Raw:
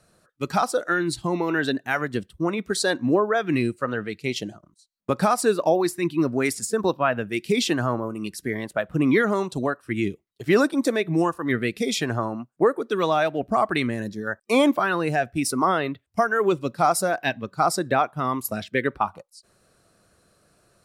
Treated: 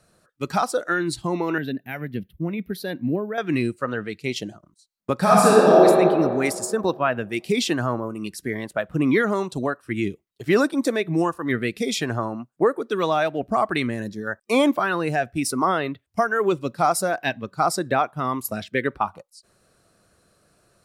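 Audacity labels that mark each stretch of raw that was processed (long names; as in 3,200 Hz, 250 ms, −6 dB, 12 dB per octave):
1.580000	3.380000	drawn EQ curve 120 Hz 0 dB, 170 Hz +4 dB, 360 Hz −6 dB, 700 Hz −8 dB, 1,200 Hz −17 dB, 2,200 Hz −3 dB, 5,400 Hz −15 dB, 8,000 Hz −28 dB, 12,000 Hz +5 dB
5.190000	5.850000	thrown reverb, RT60 2.2 s, DRR −6 dB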